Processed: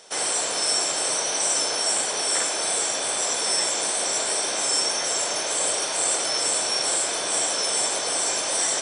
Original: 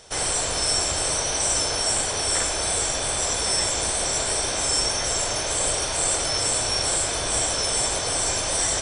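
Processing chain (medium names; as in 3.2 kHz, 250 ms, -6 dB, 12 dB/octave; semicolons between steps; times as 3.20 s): Bessel high-pass 270 Hz, order 4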